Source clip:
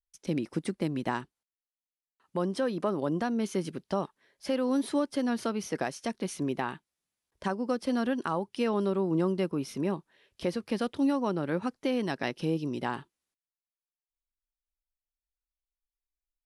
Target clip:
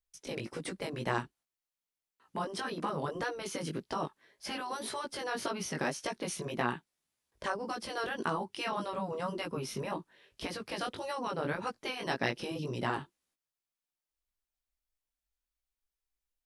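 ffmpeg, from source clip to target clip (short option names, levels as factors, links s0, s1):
-af "flanger=delay=16.5:depth=3.9:speed=1.8,afftfilt=real='re*lt(hypot(re,im),0.112)':imag='im*lt(hypot(re,im),0.112)':win_size=1024:overlap=0.75,volume=1.78"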